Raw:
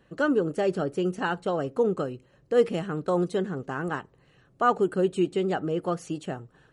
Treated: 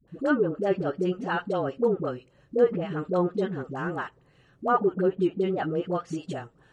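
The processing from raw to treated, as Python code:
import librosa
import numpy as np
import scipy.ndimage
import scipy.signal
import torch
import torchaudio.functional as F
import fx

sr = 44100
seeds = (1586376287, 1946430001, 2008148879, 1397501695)

y = fx.env_lowpass_down(x, sr, base_hz=1400.0, full_db=-19.0)
y = fx.dispersion(y, sr, late='highs', ms=79.0, hz=490.0)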